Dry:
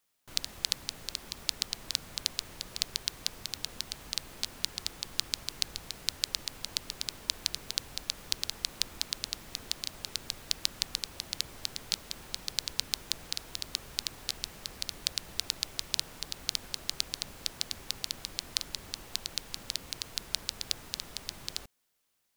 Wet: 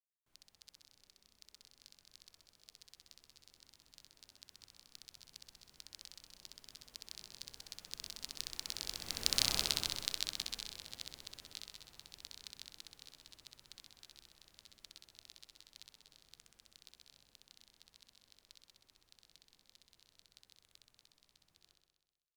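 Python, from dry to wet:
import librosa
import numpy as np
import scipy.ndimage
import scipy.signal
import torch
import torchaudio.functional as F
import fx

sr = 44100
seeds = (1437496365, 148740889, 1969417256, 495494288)

y = fx.doppler_pass(x, sr, speed_mps=16, closest_m=2.3, pass_at_s=9.46)
y = fx.room_flutter(y, sr, wall_m=10.9, rt60_s=1.2)
y = F.gain(torch.from_numpy(y), 5.5).numpy()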